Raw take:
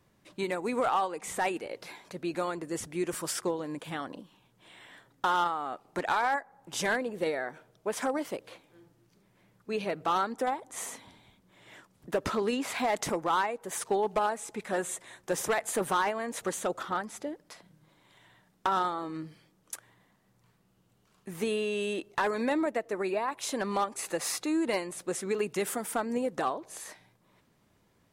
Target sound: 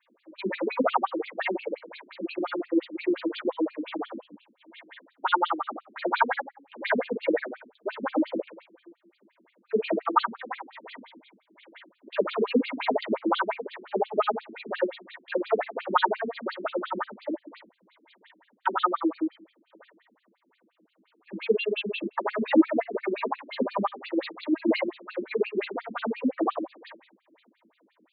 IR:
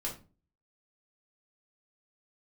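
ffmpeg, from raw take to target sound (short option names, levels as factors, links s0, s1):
-filter_complex "[0:a]asettb=1/sr,asplit=3[s0][s1][s2];[s0]atrim=end=10.084[s3];[s1]atrim=start=10.08:end=10.76,asetpts=PTS-STARTPTS,afade=t=in:d=0.004:c=qsin,afade=t=out:st=0.676:d=0.004:c=qsin,lowshelf=f=780:t=q:w=1.5:g=-9[s4];[s2]atrim=start=10.756[s5];[s3][s4]acrossfade=d=0.004:c1=hsin:c2=qsin[s6];[s6][s5]acrossfade=d=0.004:c1=qsin:c2=hsin[s7];[1:a]atrim=start_sample=2205[s8];[s7][s8]afir=irnorm=-1:irlink=0,afftfilt=real='re*between(b*sr/1024,250*pow(3400/250,0.5+0.5*sin(2*PI*5.7*pts/sr))/1.41,250*pow(3400/250,0.5+0.5*sin(2*PI*5.7*pts/sr))*1.41)':imag='im*between(b*sr/1024,250*pow(3400/250,0.5+0.5*sin(2*PI*5.7*pts/sr))/1.41,250*pow(3400/250,0.5+0.5*sin(2*PI*5.7*pts/sr))*1.41)':win_size=1024:overlap=0.75,volume=2.66"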